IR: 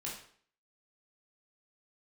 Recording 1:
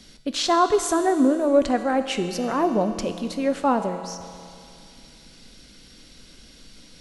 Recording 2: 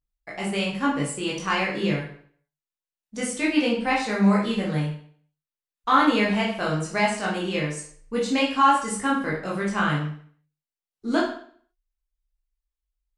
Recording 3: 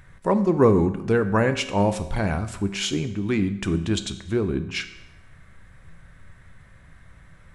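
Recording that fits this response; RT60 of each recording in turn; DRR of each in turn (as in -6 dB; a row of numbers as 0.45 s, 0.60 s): 2; 2.4 s, 0.55 s, 0.90 s; 7.5 dB, -5.0 dB, 9.0 dB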